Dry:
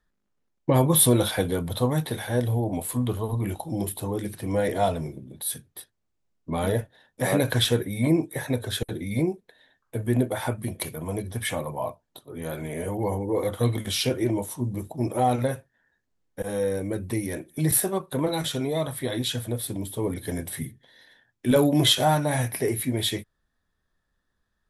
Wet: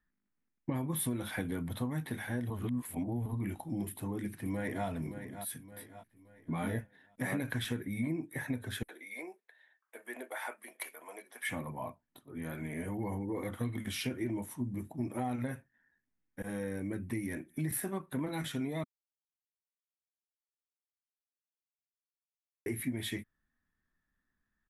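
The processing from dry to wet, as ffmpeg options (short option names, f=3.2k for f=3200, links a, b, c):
-filter_complex "[0:a]asplit=2[a][b];[b]afade=t=in:st=3.88:d=0.01,afade=t=out:st=4.87:d=0.01,aecho=0:1:570|1140|1710|2280:0.237137|0.0948549|0.037942|0.0151768[c];[a][c]amix=inputs=2:normalize=0,asettb=1/sr,asplit=3[d][e][f];[d]atrim=end=5.704[g];[e]atrim=start=5.7:end=6.79,asetpts=PTS-STARTPTS,afade=t=in:d=0.004:c=qsin,afade=t=out:st=1.086:d=0.004:c=qsin,asplit=2[h][i];[i]adelay=18,volume=-2.5dB[j];[h][j]amix=inputs=2:normalize=0,atrim=end_sample=48069[k];[f]atrim=start=6.786[l];[g][k]acrossfade=d=0.004:c1=hsin:c2=qsin[m];[m][l]acrossfade=d=0.004:c1=qsin:c2=hsin,asettb=1/sr,asplit=3[n][o][p];[n]atrim=end=8.884[q];[o]atrim=start=8.88:end=11.49,asetpts=PTS-STARTPTS,afade=t=in:d=0.004:c=qsin,afade=t=out:st=2.606:d=0.004:c=qsin,highpass=f=500:w=0.5412,highpass=f=500:w=1.3066[r];[p]atrim=start=11.486[s];[q][r]acrossfade=d=0.004:c1=hsin:c2=qsin[t];[t][s]acrossfade=d=0.004:c1=qsin:c2=hsin,asplit=5[u][v][w][x][y];[u]atrim=end=2.502[z];[v]atrim=start=2.498:end=3.262,asetpts=PTS-STARTPTS,areverse[aa];[w]atrim=start=3.258:end=18.84,asetpts=PTS-STARTPTS,afade=t=out:st=15.578:d=0.004:c=hsin[ab];[x]atrim=start=18.84:end=22.66,asetpts=PTS-STARTPTS,volume=0[ac];[y]atrim=start=22.66,asetpts=PTS-STARTPTS,afade=t=in:d=0.004:c=hsin[ad];[z][aa]acrossfade=d=0.004:c1=hsin:c2=hsin[ae];[ab][ac][ad]concat=n=3:v=0:a=1[af];[ae][af]acrossfade=d=0.004:c1=hsin:c2=hsin,equalizer=f=250:t=o:w=1:g=8,equalizer=f=500:t=o:w=1:g=-7,equalizer=f=2k:t=o:w=1:g=8,equalizer=f=4k:t=o:w=1:g=-7,equalizer=f=8k:t=o:w=1:g=-3,acompressor=threshold=-22dB:ratio=6,volume=-9dB"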